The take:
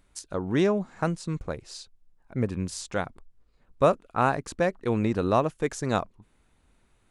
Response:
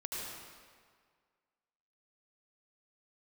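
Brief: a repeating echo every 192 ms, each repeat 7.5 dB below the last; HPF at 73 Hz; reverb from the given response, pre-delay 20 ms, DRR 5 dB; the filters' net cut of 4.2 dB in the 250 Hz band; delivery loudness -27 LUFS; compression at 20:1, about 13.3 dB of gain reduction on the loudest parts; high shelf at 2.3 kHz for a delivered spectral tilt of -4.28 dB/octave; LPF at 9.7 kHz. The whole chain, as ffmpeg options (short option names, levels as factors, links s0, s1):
-filter_complex "[0:a]highpass=73,lowpass=9700,equalizer=f=250:t=o:g=-6,highshelf=f=2300:g=5.5,acompressor=threshold=0.0355:ratio=20,aecho=1:1:192|384|576|768|960:0.422|0.177|0.0744|0.0312|0.0131,asplit=2[s0][s1];[1:a]atrim=start_sample=2205,adelay=20[s2];[s1][s2]afir=irnorm=-1:irlink=0,volume=0.447[s3];[s0][s3]amix=inputs=2:normalize=0,volume=2.37"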